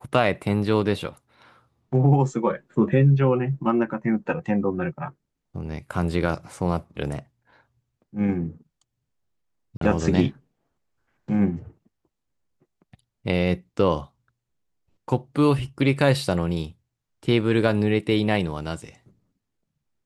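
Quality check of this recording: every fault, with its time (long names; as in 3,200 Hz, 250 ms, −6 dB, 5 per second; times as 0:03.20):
0:09.77–0:09.81: drop-out 43 ms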